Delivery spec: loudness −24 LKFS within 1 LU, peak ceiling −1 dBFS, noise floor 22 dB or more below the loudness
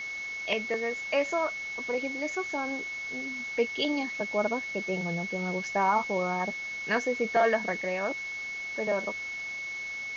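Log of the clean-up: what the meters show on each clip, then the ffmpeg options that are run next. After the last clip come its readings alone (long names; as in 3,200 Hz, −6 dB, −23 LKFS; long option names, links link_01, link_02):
interfering tone 2,200 Hz; level of the tone −34 dBFS; background noise floor −37 dBFS; target noise floor −52 dBFS; integrated loudness −30.0 LKFS; sample peak −13.0 dBFS; target loudness −24.0 LKFS
→ -af "bandreject=frequency=2200:width=30"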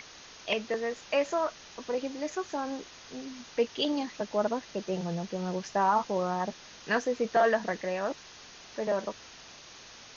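interfering tone none found; background noise floor −50 dBFS; target noise floor −53 dBFS
→ -af "afftdn=noise_reduction=6:noise_floor=-50"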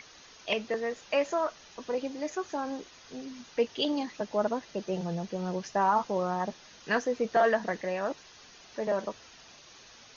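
background noise floor −54 dBFS; integrated loudness −31.0 LKFS; sample peak −13.5 dBFS; target loudness −24.0 LKFS
→ -af "volume=7dB"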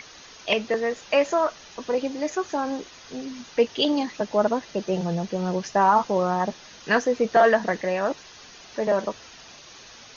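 integrated loudness −24.0 LKFS; sample peak −6.5 dBFS; background noise floor −47 dBFS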